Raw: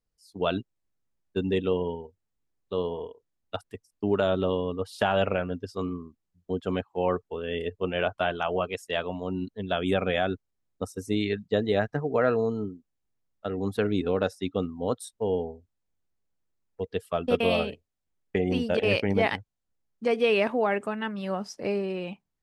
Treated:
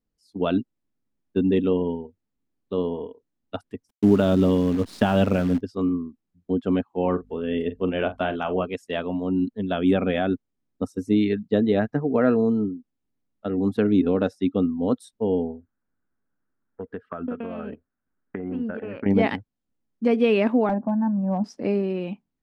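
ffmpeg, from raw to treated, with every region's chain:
ffmpeg -i in.wav -filter_complex "[0:a]asettb=1/sr,asplit=3[link_01][link_02][link_03];[link_01]atrim=end=3.894[link_04];[link_02]atrim=start=3.89:end=5.61,asetpts=PTS-STARTPTS,afade=type=in:duration=0.004:curve=qsin,afade=type=out:start_time=1.716:duration=0.004:curve=qsin,bass=frequency=250:gain=7,treble=frequency=4000:gain=8,acrusher=bits=7:dc=4:mix=0:aa=0.000001[link_05];[link_03]atrim=start=5.606[link_06];[link_04][link_05]acrossfade=duration=0.004:curve1=hsin:curve2=qsin[link_07];[link_07][link_06]acrossfade=duration=0.004:curve1=qsin:curve2=hsin,asettb=1/sr,asplit=3[link_08][link_09][link_10];[link_08]atrim=end=7.014[link_11];[link_09]atrim=start=7.01:end=8.63,asetpts=PTS-STARTPTS,afade=type=in:duration=0.004:curve=qsin,afade=type=out:start_time=1.616:duration=0.004:curve=qsin,acompressor=mode=upward:threshold=-39dB:ratio=2.5:attack=3.2:release=140:knee=2.83:detection=peak,aeval=exprs='val(0)+0.00141*(sin(2*PI*50*n/s)+sin(2*PI*2*50*n/s)/2+sin(2*PI*3*50*n/s)/3+sin(2*PI*4*50*n/s)/4+sin(2*PI*5*50*n/s)/5)':channel_layout=same,asplit=2[link_12][link_13];[link_13]adelay=43,volume=-12.5dB[link_14];[link_12][link_14]amix=inputs=2:normalize=0,atrim=end_sample=71442[link_15];[link_10]atrim=start=8.626[link_16];[link_11][link_15]acrossfade=duration=0.004:curve1=hsin:curve2=qsin[link_17];[link_17][link_16]acrossfade=duration=0.004:curve1=qsin:curve2=hsin,asettb=1/sr,asplit=3[link_18][link_19][link_20];[link_18]atrim=end=15.504[link_21];[link_19]atrim=start=15.5:end=19.06,asetpts=PTS-STARTPTS,afade=type=in:duration=0.004:curve=qsin,afade=type=out:start_time=3.556:duration=0.004:curve=qsin,acompressor=threshold=-33dB:ratio=10:attack=3.2:release=140:knee=1:detection=peak,lowpass=frequency=1500:width_type=q:width=4.7[link_22];[link_20]atrim=start=19.056[link_23];[link_21][link_22]acrossfade=duration=0.004:curve1=hsin:curve2=qsin[link_24];[link_24][link_23]acrossfade=duration=0.004:curve1=qsin:curve2=hsin,asettb=1/sr,asplit=3[link_25][link_26][link_27];[link_25]atrim=end=20.694[link_28];[link_26]atrim=start=20.69:end=21.44,asetpts=PTS-STARTPTS,afade=type=in:duration=0.004:curve=qsin,afade=type=out:start_time=0.746:duration=0.004:curve=qsin,lowpass=frequency=1000:width=0.5412,lowpass=frequency=1000:width=1.3066,aecho=1:1:1.2:0.91,atrim=end_sample=33075,aeval=exprs='clip(val(0),-1,0.075)':channel_layout=same[link_29];[link_27]atrim=start=21.436[link_30];[link_28][link_29]acrossfade=duration=0.004:curve1=hsin:curve2=qsin[link_31];[link_31][link_30]acrossfade=duration=0.004:curve1=qsin:curve2=hsin,lowpass=frequency=3500:poles=1,equalizer=frequency=250:width_type=o:width=0.91:gain=12" out.wav

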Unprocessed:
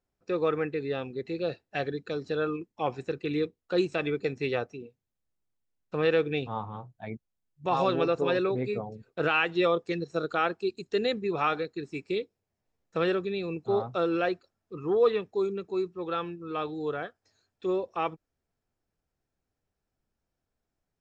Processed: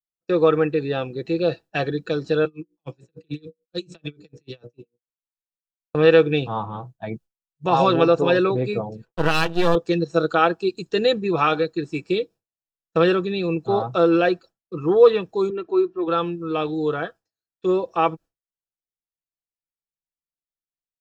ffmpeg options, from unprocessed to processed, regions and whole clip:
ffmpeg -i in.wav -filter_complex "[0:a]asettb=1/sr,asplit=3[link_01][link_02][link_03];[link_01]atrim=end=2.454[link_04];[link_02]atrim=start=2.45:end=5.95,asetpts=PTS-STARTPTS,afade=type=in:duration=0.004:curve=qsin,afade=type=out:start_time=3.496:duration=0.004:curve=qsin,bandreject=frequency=60:width_type=h:width=6,bandreject=frequency=120:width_type=h:width=6,bandreject=frequency=180:width_type=h:width=6,bandreject=frequency=240:width_type=h:width=6,bandreject=frequency=300:width_type=h:width=6,bandreject=frequency=360:width_type=h:width=6,bandreject=frequency=420:width_type=h:width=6,bandreject=frequency=480:width_type=h:width=6,bandreject=frequency=540:width_type=h:width=6,bandreject=frequency=600:width_type=h:width=6,acrossover=split=260|3000[link_05][link_06][link_07];[link_06]acompressor=threshold=-50dB:ratio=2:attack=3.2:release=140:knee=2.83:detection=peak[link_08];[link_05][link_08][link_07]amix=inputs=3:normalize=0,aeval=exprs='val(0)*pow(10,-32*(0.5-0.5*cos(2*PI*6.8*n/s))/20)':channel_layout=same[link_09];[link_03]atrim=start=5.946[link_10];[link_04][link_09]acrossfade=duration=0.004:curve1=hsin:curve2=qsin[link_11];[link_11][link_10]acrossfade=duration=0.004:curve1=qsin:curve2=hsin,asettb=1/sr,asplit=3[link_12][link_13][link_14];[link_12]atrim=end=9.054[link_15];[link_13]atrim=start=9.05:end=9.75,asetpts=PTS-STARTPTS,afade=type=in:duration=0.004:curve=qsin,afade=type=out:start_time=0.696:duration=0.004:curve=qsin,highshelf=frequency=4700:gain=-6.5,aeval=exprs='max(val(0),0)':channel_layout=same[link_16];[link_14]atrim=start=9.746[link_17];[link_15][link_16]acrossfade=duration=0.004:curve1=hsin:curve2=qsin[link_18];[link_18][link_17]acrossfade=duration=0.004:curve1=qsin:curve2=hsin,asettb=1/sr,asplit=3[link_19][link_20][link_21];[link_19]atrim=end=15.504[link_22];[link_20]atrim=start=15.5:end=16.08,asetpts=PTS-STARTPTS,afade=type=in:duration=0.004:curve=qsin,afade=type=out:start_time=0.576:duration=0.004:curve=qsin,lowpass=2600,lowshelf=frequency=150:gain=-12,aecho=1:1:2.9:0.68,atrim=end_sample=25578[link_23];[link_21]atrim=start=16.076[link_24];[link_22][link_23]acrossfade=duration=0.004:curve1=hsin:curve2=qsin[link_25];[link_25][link_24]acrossfade=duration=0.004:curve1=qsin:curve2=hsin,aecho=1:1:6.1:0.41,agate=range=-33dB:threshold=-45dB:ratio=3:detection=peak,bandreject=frequency=2100:width=5.2,volume=8dB" out.wav

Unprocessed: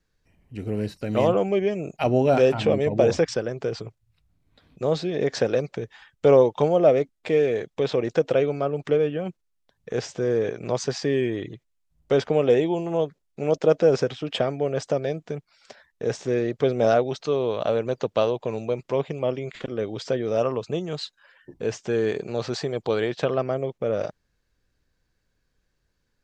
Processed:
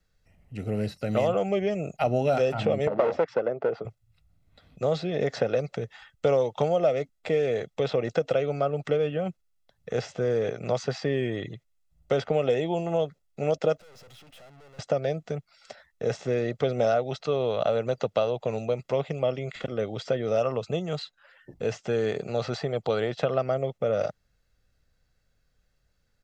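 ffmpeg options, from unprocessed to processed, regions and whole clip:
ffmpeg -i in.wav -filter_complex "[0:a]asettb=1/sr,asplit=3[link_01][link_02][link_03];[link_01]atrim=end=2.874[link_04];[link_02]atrim=start=2.87:end=3.85,asetpts=PTS-STARTPTS,afade=type=in:duration=0.004:curve=qsin,afade=type=out:start_time=0.976:duration=0.004:curve=qsin,tiltshelf=frequency=1300:gain=7.5,aeval=exprs='clip(val(0),-1,0.15)':channel_layout=same,highpass=370,lowpass=2300[link_05];[link_03]atrim=start=3.846[link_06];[link_04][link_05]acrossfade=duration=0.004:curve1=hsin:curve2=qsin[link_07];[link_07][link_06]acrossfade=duration=0.004:curve1=qsin:curve2=hsin,asettb=1/sr,asplit=3[link_08][link_09][link_10];[link_08]atrim=end=13.764[link_11];[link_09]atrim=start=13.76:end=14.79,asetpts=PTS-STARTPTS,afade=type=in:duration=0.004:curve=qsin,afade=type=out:start_time=1.026:duration=0.004:curve=qsin,acompressor=threshold=-32dB:ratio=4:attack=3.2:release=140:knee=1:detection=peak,acrusher=bits=5:mode=log:mix=0:aa=0.000001,aeval=exprs='(tanh(355*val(0)+0.55)-tanh(0.55))/355':channel_layout=same[link_12];[link_10]atrim=start=14.786[link_13];[link_11][link_12]acrossfade=duration=0.004:curve1=hsin:curve2=qsin[link_14];[link_14][link_13]acrossfade=duration=0.004:curve1=qsin:curve2=hsin,aecho=1:1:1.5:0.46,acrossover=split=88|1600|3900[link_15][link_16][link_17][link_18];[link_15]acompressor=threshold=-56dB:ratio=4[link_19];[link_16]acompressor=threshold=-21dB:ratio=4[link_20];[link_17]acompressor=threshold=-40dB:ratio=4[link_21];[link_18]acompressor=threshold=-49dB:ratio=4[link_22];[link_19][link_20][link_21][link_22]amix=inputs=4:normalize=0" out.wav

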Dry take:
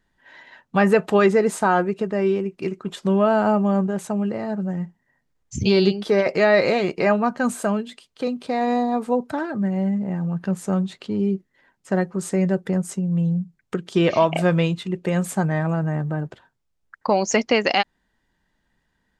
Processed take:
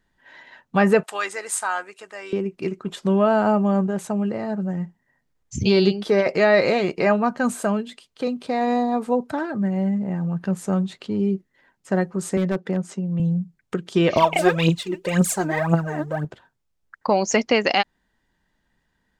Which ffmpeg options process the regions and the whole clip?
ffmpeg -i in.wav -filter_complex "[0:a]asettb=1/sr,asplit=3[link_01][link_02][link_03];[link_01]atrim=end=1.034[link_04];[link_02]atrim=start=1.03:end=2.33,asetpts=PTS-STARTPTS,afade=type=in:duration=0.004:curve=qsin,afade=type=out:start_time=1.296:duration=0.004:curve=qsin,highpass=1100,equalizer=frequency=9000:width_type=o:width=0.81:gain=11,tremolo=f=98:d=0.333[link_05];[link_03]atrim=start=2.326[link_06];[link_04][link_05]acrossfade=duration=0.004:curve1=hsin:curve2=qsin[link_07];[link_07][link_06]acrossfade=duration=0.004:curve1=qsin:curve2=hsin,asettb=1/sr,asplit=3[link_08][link_09][link_10];[link_08]atrim=end=12.374[link_11];[link_09]atrim=start=12.37:end=13.2,asetpts=PTS-STARTPTS,afade=type=in:duration=0.004:curve=qsin,afade=type=out:start_time=0.826:duration=0.004:curve=qsin,highpass=170,lowpass=5400,aeval=exprs='0.2*(abs(mod(val(0)/0.2+3,4)-2)-1)':channel_layout=same[link_12];[link_10]atrim=start=13.196[link_13];[link_11][link_12]acrossfade=duration=0.004:curve1=hsin:curve2=qsin[link_14];[link_14][link_13]acrossfade=duration=0.004:curve1=qsin:curve2=hsin,asettb=1/sr,asplit=3[link_15][link_16][link_17];[link_15]atrim=end=14.164[link_18];[link_16]atrim=start=14.16:end=16.25,asetpts=PTS-STARTPTS,afade=type=in:duration=0.004:curve=qsin,afade=type=out:start_time=2.086:duration=0.004:curve=qsin,bass=frequency=250:gain=-5,treble=frequency=4000:gain=5,aphaser=in_gain=1:out_gain=1:delay=3.4:decay=0.75:speed=1.9:type=triangular[link_19];[link_17]atrim=start=16.246[link_20];[link_18][link_19]acrossfade=duration=0.004:curve1=hsin:curve2=qsin[link_21];[link_21][link_20]acrossfade=duration=0.004:curve1=qsin:curve2=hsin" out.wav

